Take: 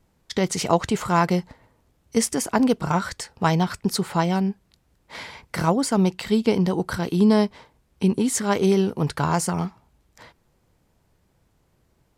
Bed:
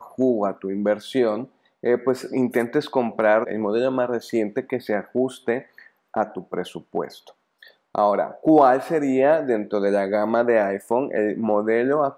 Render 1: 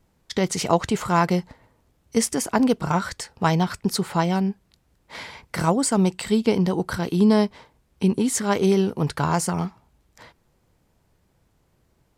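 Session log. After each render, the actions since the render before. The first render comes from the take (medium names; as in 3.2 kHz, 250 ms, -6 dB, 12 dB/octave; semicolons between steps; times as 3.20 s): 5.59–6.32 s: peaking EQ 8.1 kHz +11 dB 0.22 oct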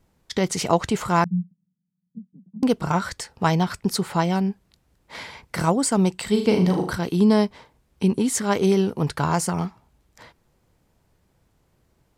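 1.24–2.63 s: Butterworth band-pass 180 Hz, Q 5.6; 6.30–6.92 s: flutter echo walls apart 6.6 m, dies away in 0.44 s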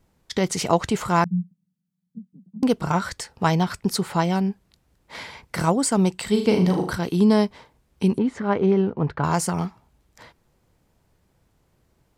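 8.18–9.24 s: low-pass 1.8 kHz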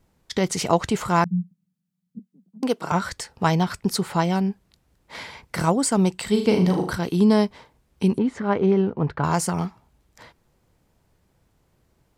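2.19–2.92 s: high-pass 310 Hz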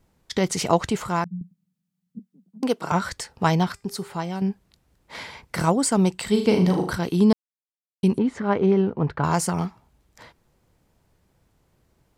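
0.81–1.41 s: fade out, to -11 dB; 3.72–4.42 s: feedback comb 400 Hz, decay 0.39 s; 7.33–8.03 s: mute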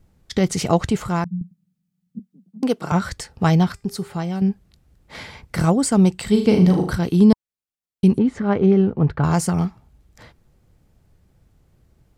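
bass shelf 200 Hz +10.5 dB; band-stop 970 Hz, Q 11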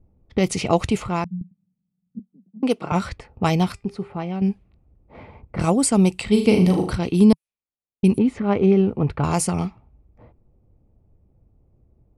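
level-controlled noise filter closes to 650 Hz, open at -13.5 dBFS; graphic EQ with 31 bands 160 Hz -6 dB, 1.6 kHz -8 dB, 2.5 kHz +8 dB, 10 kHz +12 dB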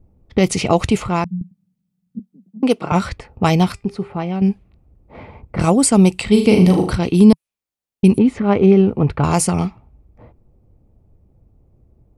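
trim +5 dB; peak limiter -1 dBFS, peak gain reduction 2.5 dB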